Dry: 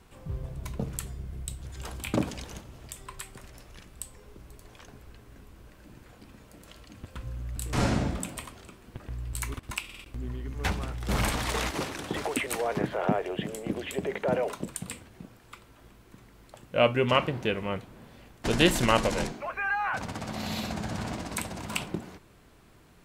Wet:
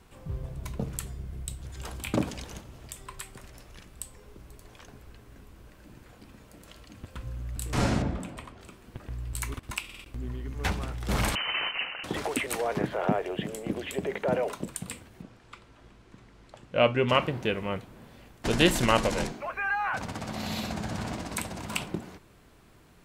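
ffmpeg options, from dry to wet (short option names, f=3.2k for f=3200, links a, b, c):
-filter_complex "[0:a]asettb=1/sr,asplit=3[a][b][c];[a]atrim=end=8.024[d];[b]atrim=start=8.02:end=8.61,asetpts=PTS-STARTPTS,afade=t=in:d=0.004:c=qsin,afade=t=out:st=0.586:d=0.004:c=qsin,lowpass=f=1.9k:p=1[e];[c]atrim=start=8.606[f];[d][e]acrossfade=d=0.004:c1=hsin:c2=qsin[g];[g][f]acrossfade=d=0.004:c1=qsin:c2=hsin,asettb=1/sr,asplit=3[h][i][j];[h]atrim=end=11.354[k];[i]atrim=start=11.35:end=12.04,asetpts=PTS-STARTPTS,afade=t=in:d=0.004:c=qsin,afade=t=out:st=0.686:d=0.004:c=qsin,lowpass=f=2.6k:t=q:w=0.5098,lowpass=f=2.6k:t=q:w=0.6013,lowpass=f=2.6k:t=q:w=0.9,lowpass=f=2.6k:t=q:w=2.563,afreqshift=-3100[l];[j]atrim=start=12.036[m];[k][l]acrossfade=d=0.004:c1=hsin:c2=qsin[n];[n][m]acrossfade=d=0.004:c1=qsin:c2=hsin,asettb=1/sr,asplit=3[o][p][q];[o]atrim=end=15.224[r];[p]atrim=start=15.22:end=17.08,asetpts=PTS-STARTPTS,afade=t=in:d=0.004:c=qsin,afade=t=out:st=1.856:d=0.004:c=qsin,lowpass=6.6k[s];[q]atrim=start=17.076[t];[r][s]acrossfade=d=0.004:c1=hsin:c2=qsin[u];[u][t]acrossfade=d=0.004:c1=qsin:c2=hsin"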